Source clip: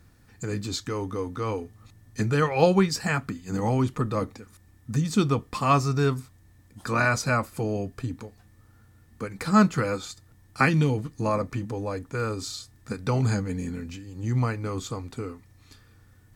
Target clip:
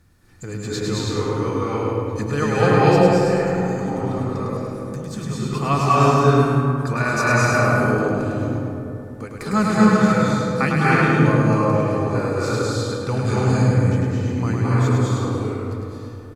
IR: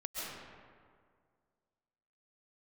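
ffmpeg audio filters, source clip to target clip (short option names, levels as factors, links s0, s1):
-filter_complex "[0:a]asettb=1/sr,asplit=3[s0][s1][s2];[s0]atrim=end=2.774[s3];[s1]atrim=start=2.77:end=5.53,asetpts=PTS-STARTPTS,afade=t=in:d=0.004:c=qsin,afade=t=out:st=2.756:d=0.004:c=qsin,acompressor=threshold=0.0316:ratio=6[s4];[s2]atrim=start=5.526[s5];[s3][s4]acrossfade=d=0.004:c1=hsin:c2=qsin[s6];[s6][s5]acrossfade=d=0.004:c1=qsin:c2=hsin,aecho=1:1:104|208|312|416|520:0.631|0.259|0.106|0.0435|0.0178[s7];[1:a]atrim=start_sample=2205,asetrate=26901,aresample=44100[s8];[s7][s8]afir=irnorm=-1:irlink=0,volume=1.12"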